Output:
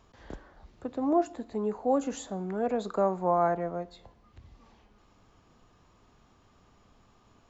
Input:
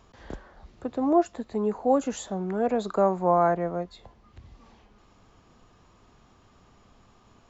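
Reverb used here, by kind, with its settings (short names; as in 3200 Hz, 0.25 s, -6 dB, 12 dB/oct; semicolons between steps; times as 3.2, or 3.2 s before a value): FDN reverb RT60 0.86 s, high-frequency decay 0.75×, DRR 18 dB; gain -4 dB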